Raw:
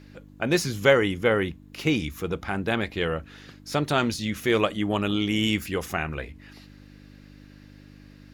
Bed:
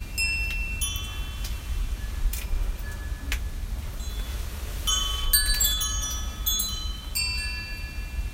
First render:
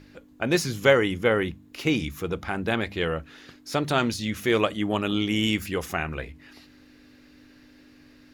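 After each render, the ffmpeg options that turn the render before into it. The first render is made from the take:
-af "bandreject=f=50:t=h:w=4,bandreject=f=100:t=h:w=4,bandreject=f=150:t=h:w=4,bandreject=f=200:t=h:w=4"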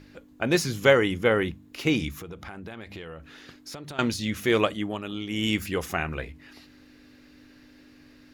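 -filter_complex "[0:a]asettb=1/sr,asplit=3[s0][s1][s2];[s0]atrim=end=2.134[s3];[s1]atrim=start=2.13:end=3.99,asetpts=PTS-STARTPTS,afade=t=in:d=0.004:c=qsin,afade=t=out:st=1.856:d=0.004:c=qsin,acompressor=threshold=0.0158:ratio=8:attack=3.2:release=140:knee=1:detection=peak[s4];[s2]atrim=start=3.986[s5];[s3][s4]acrossfade=d=0.004:c1=hsin:c2=qsin[s6];[s6][s5]acrossfade=d=0.004:c1=qsin:c2=hsin,asplit=3[s7][s8][s9];[s7]atrim=end=4.98,asetpts=PTS-STARTPTS,afade=t=out:st=4.68:d=0.3:silence=0.375837[s10];[s8]atrim=start=4.98:end=5.26,asetpts=PTS-STARTPTS,volume=0.376[s11];[s9]atrim=start=5.26,asetpts=PTS-STARTPTS,afade=t=in:d=0.3:silence=0.375837[s12];[s10][s11][s12]concat=n=3:v=0:a=1"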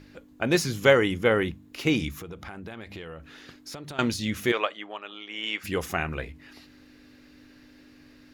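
-filter_complex "[0:a]asplit=3[s0][s1][s2];[s0]afade=t=out:st=4.51:d=0.02[s3];[s1]highpass=660,lowpass=3600,afade=t=in:st=4.51:d=0.02,afade=t=out:st=5.63:d=0.02[s4];[s2]afade=t=in:st=5.63:d=0.02[s5];[s3][s4][s5]amix=inputs=3:normalize=0"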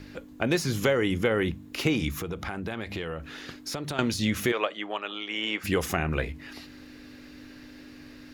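-filter_complex "[0:a]acrossover=split=610|1400[s0][s1][s2];[s0]acompressor=threshold=0.0355:ratio=4[s3];[s1]acompressor=threshold=0.0112:ratio=4[s4];[s2]acompressor=threshold=0.0158:ratio=4[s5];[s3][s4][s5]amix=inputs=3:normalize=0,asplit=2[s6][s7];[s7]alimiter=limit=0.0944:level=0:latency=1:release=218,volume=1.06[s8];[s6][s8]amix=inputs=2:normalize=0"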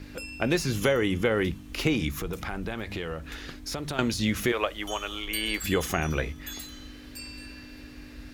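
-filter_complex "[1:a]volume=0.178[s0];[0:a][s0]amix=inputs=2:normalize=0"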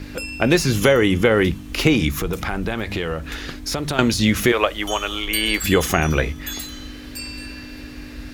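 -af "volume=2.82,alimiter=limit=0.794:level=0:latency=1"

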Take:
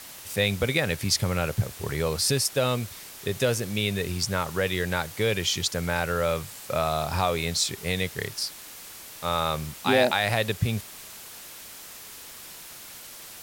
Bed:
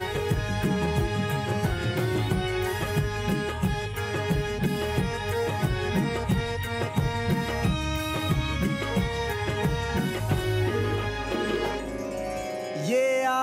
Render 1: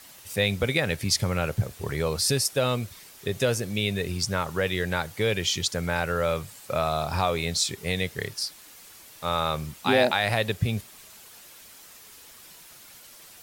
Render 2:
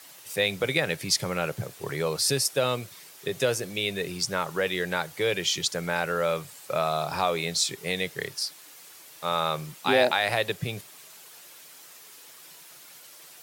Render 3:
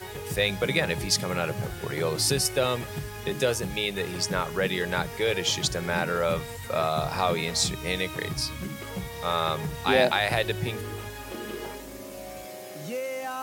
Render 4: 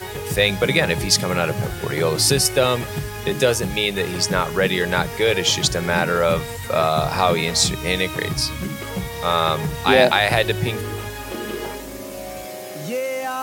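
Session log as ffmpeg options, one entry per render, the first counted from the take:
-af "afftdn=nr=7:nf=-44"
-af "highpass=f=140:w=0.5412,highpass=f=140:w=1.3066,equalizer=f=220:w=5.3:g=-13"
-filter_complex "[1:a]volume=0.355[s0];[0:a][s0]amix=inputs=2:normalize=0"
-af "volume=2.37,alimiter=limit=0.891:level=0:latency=1"

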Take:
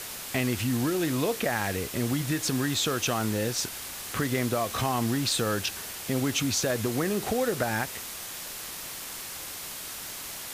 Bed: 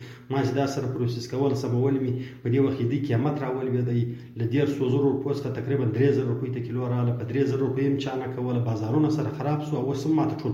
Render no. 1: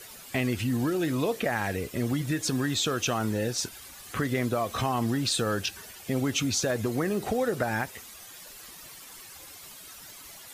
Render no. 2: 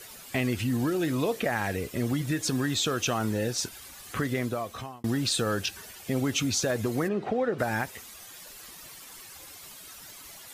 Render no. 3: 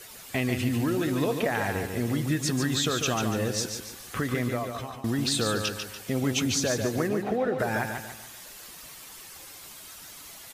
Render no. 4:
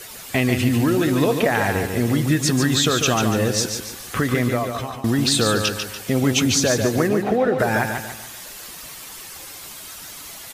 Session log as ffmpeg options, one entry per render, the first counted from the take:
-af "afftdn=nr=12:nf=-39"
-filter_complex "[0:a]asplit=3[s0][s1][s2];[s0]afade=t=out:st=7.07:d=0.02[s3];[s1]highpass=130,lowpass=2600,afade=t=in:st=7.07:d=0.02,afade=t=out:st=7.58:d=0.02[s4];[s2]afade=t=in:st=7.58:d=0.02[s5];[s3][s4][s5]amix=inputs=3:normalize=0,asplit=2[s6][s7];[s6]atrim=end=5.04,asetpts=PTS-STARTPTS,afade=t=out:st=3.99:d=1.05:c=qsin[s8];[s7]atrim=start=5.04,asetpts=PTS-STARTPTS,afade=t=in:d=0.004:c=hsin[s9];[s8][s9]concat=n=2:v=0:a=1"
-af "aecho=1:1:144|288|432|576|720:0.501|0.2|0.0802|0.0321|0.0128"
-af "volume=2.51"

